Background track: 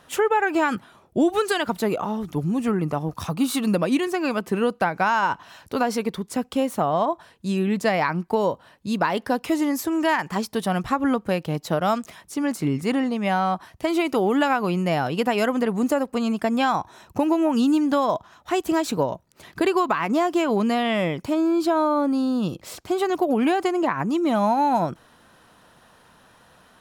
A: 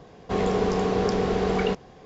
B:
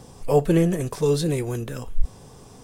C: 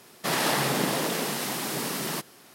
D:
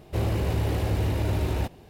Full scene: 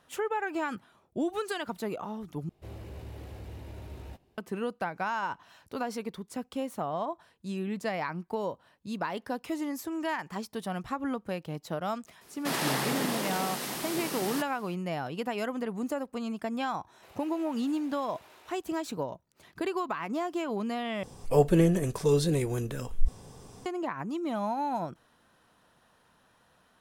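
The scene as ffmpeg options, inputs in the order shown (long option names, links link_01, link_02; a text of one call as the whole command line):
ffmpeg -i bed.wav -i cue0.wav -i cue1.wav -i cue2.wav -i cue3.wav -filter_complex "[4:a]asplit=2[link_01][link_02];[0:a]volume=-11dB[link_03];[link_01]asplit=2[link_04][link_05];[link_05]adelay=15,volume=-12dB[link_06];[link_04][link_06]amix=inputs=2:normalize=0[link_07];[link_02]highpass=800[link_08];[link_03]asplit=3[link_09][link_10][link_11];[link_09]atrim=end=2.494[link_12];[link_07]atrim=end=1.89,asetpts=PTS-STARTPTS,volume=-18dB[link_13];[link_10]atrim=start=4.376:end=21.034[link_14];[2:a]atrim=end=2.63,asetpts=PTS-STARTPTS,volume=-3.5dB[link_15];[link_11]atrim=start=23.656[link_16];[3:a]atrim=end=2.54,asetpts=PTS-STARTPTS,volume=-5dB,afade=type=in:duration=0.004:curve=hsin,afade=type=out:start_time=2.536:duration=0.004:curve=hsin,adelay=12210[link_17];[link_08]atrim=end=1.89,asetpts=PTS-STARTPTS,volume=-17.5dB,afade=type=in:duration=0.004:curve=hsin,afade=type=out:start_time=1.886:duration=0.004:curve=hsin,adelay=16890[link_18];[link_12][link_13]acrossfade=duration=0.004:curve1=hsin:curve2=hsin[link_19];[link_19][link_14]acrossfade=duration=0.004:curve1=hsin:curve2=hsin[link_20];[link_20][link_15]acrossfade=duration=0.004:curve1=hsin:curve2=hsin[link_21];[link_21][link_16]acrossfade=duration=0.004:curve1=hsin:curve2=hsin[link_22];[link_22][link_17][link_18]amix=inputs=3:normalize=0" out.wav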